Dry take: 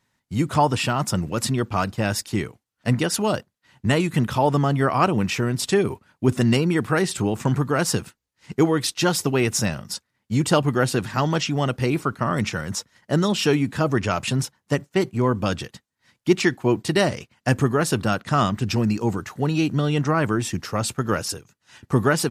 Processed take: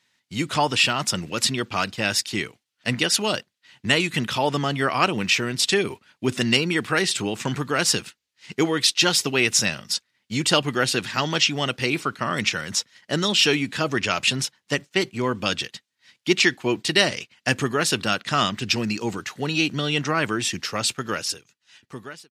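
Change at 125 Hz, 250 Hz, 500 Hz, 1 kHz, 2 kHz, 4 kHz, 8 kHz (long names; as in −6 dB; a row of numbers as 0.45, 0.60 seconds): −7.5, −4.5, −3.0, −2.0, +4.5, +8.0, +3.5 decibels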